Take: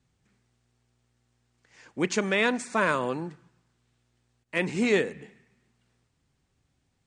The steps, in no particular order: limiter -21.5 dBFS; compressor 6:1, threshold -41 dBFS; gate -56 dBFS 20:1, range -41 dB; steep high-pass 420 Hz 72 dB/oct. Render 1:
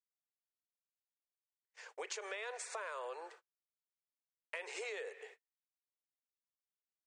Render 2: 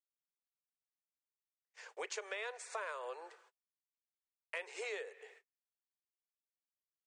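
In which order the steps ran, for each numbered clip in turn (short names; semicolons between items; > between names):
limiter > steep high-pass > gate > compressor; gate > steep high-pass > compressor > limiter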